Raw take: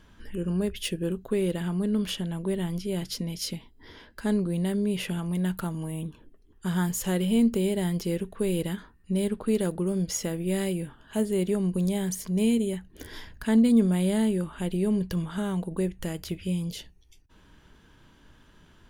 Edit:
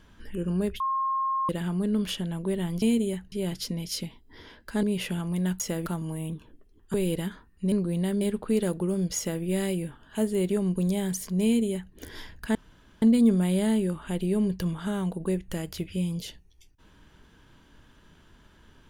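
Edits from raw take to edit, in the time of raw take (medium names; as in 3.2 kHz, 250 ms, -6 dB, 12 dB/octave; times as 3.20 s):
0.80–1.49 s: bleep 1.07 kHz -24 dBFS
4.33–4.82 s: move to 9.19 s
6.67–8.41 s: delete
10.15–10.41 s: copy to 5.59 s
12.42–12.92 s: copy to 2.82 s
13.53 s: insert room tone 0.47 s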